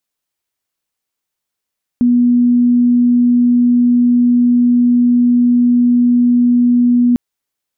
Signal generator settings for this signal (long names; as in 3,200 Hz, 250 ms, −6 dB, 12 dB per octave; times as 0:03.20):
tone sine 243 Hz −7.5 dBFS 5.15 s